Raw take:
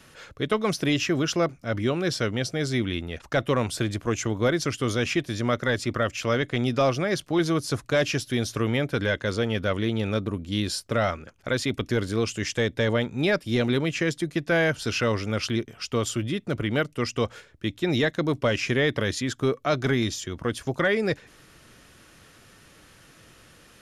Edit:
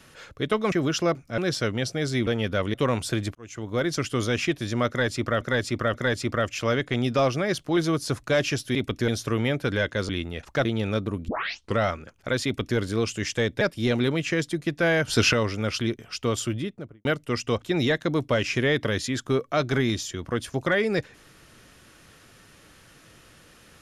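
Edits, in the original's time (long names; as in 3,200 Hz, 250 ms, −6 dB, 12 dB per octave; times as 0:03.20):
0:00.72–0:01.06: remove
0:01.72–0:01.97: remove
0:02.86–0:03.42: swap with 0:09.38–0:09.85
0:04.03–0:04.65: fade in
0:05.56–0:06.09: repeat, 3 plays
0:10.48: tape start 0.50 s
0:11.65–0:11.98: duplicate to 0:08.37
0:12.81–0:13.30: remove
0:14.77–0:15.02: clip gain +7.5 dB
0:16.16–0:16.74: fade out and dull
0:17.31–0:17.75: remove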